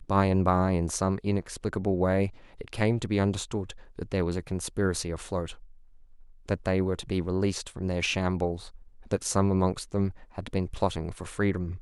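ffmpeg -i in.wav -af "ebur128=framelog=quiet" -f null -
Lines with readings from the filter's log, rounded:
Integrated loudness:
  I:         -28.7 LUFS
  Threshold: -39.3 LUFS
Loudness range:
  LRA:         3.9 LU
  Threshold: -49.8 LUFS
  LRA low:   -31.7 LUFS
  LRA high:  -27.7 LUFS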